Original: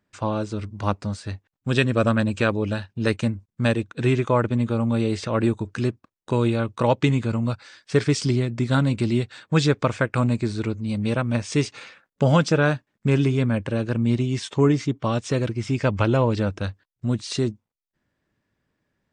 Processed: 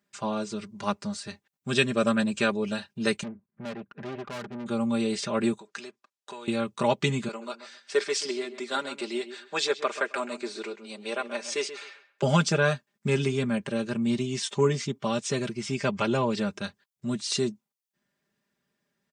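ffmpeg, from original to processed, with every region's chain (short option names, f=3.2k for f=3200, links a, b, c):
-filter_complex "[0:a]asettb=1/sr,asplit=3[a][b][c];[a]atrim=end=3.234[d];[b]atrim=start=3.23:end=4.66,asetpts=PTS-STARTPTS,afade=t=in:d=0.004:c=qsin,afade=t=out:st=1.426:d=0.004:c=qsin,lowpass=f=1.9k:w=0.5412,lowpass=f=1.9k:w=1.3066,acompressor=mode=upward:threshold=-41dB:ratio=2.5:attack=3.2:release=140:knee=2.83:detection=peak,aeval=exprs='(tanh(28.2*val(0)+0.7)-tanh(0.7))/28.2':c=same[e];[c]atrim=start=4.656[f];[d][e]acrossfade=d=0.004:c1=hsin:c2=qsin[g];[g][f]acrossfade=d=0.004:c1=qsin:c2=hsin,asettb=1/sr,asplit=3[h][i][j];[h]atrim=end=5.584[k];[i]atrim=start=5.58:end=6.48,asetpts=PTS-STARTPTS,afade=t=in:d=0.004:c=qsin,afade=t=out:st=0.896:d=0.004:c=qsin,acompressor=threshold=-26dB:ratio=4:attack=3.2:release=140:knee=1:detection=peak,highpass=520,lowpass=7.6k[l];[j]atrim=start=6.476[m];[k][l]acrossfade=d=0.004:c1=hsin:c2=qsin[n];[n][m]acrossfade=d=0.004:c1=qsin:c2=hsin,asettb=1/sr,asplit=3[o][p][q];[o]atrim=end=7.284[r];[p]atrim=start=7.28:end=12.23,asetpts=PTS-STARTPTS,afade=t=in:d=0.004:c=qsin,afade=t=out:st=4.946:d=0.004:c=qsin,highpass=f=350:w=0.5412,highpass=f=350:w=1.3066,highshelf=f=7.1k:g=-8.5,asplit=2[s][t];[t]adelay=132,lowpass=f=2.9k:p=1,volume=-12dB,asplit=2[u][v];[v]adelay=132,lowpass=f=2.9k:p=1,volume=0.2,asplit=2[w][x];[x]adelay=132,lowpass=f=2.9k:p=1,volume=0.2[y];[s][u][w][y]amix=inputs=4:normalize=0,atrim=end_sample=218295[z];[q]atrim=start=12.226[aa];[r][z]acrossfade=d=0.004:c1=hsin:c2=qsin[ab];[ab][aa]acrossfade=d=0.004:c1=qsin:c2=hsin,highpass=110,highshelf=f=3.2k:g=9.5,aecho=1:1:5:0.78,volume=-6.5dB"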